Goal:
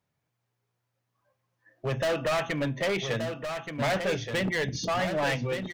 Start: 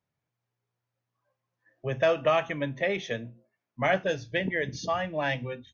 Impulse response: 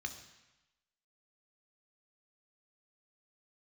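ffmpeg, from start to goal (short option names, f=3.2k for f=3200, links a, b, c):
-af "asoftclip=type=hard:threshold=-29dB,aecho=1:1:1176:0.447,volume=4.5dB"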